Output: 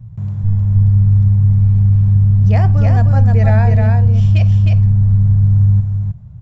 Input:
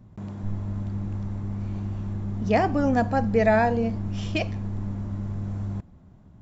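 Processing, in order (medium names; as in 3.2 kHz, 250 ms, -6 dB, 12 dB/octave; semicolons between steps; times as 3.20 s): resonant low shelf 190 Hz +13 dB, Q 3; on a send: delay 310 ms -3.5 dB; on the sum: trim -1 dB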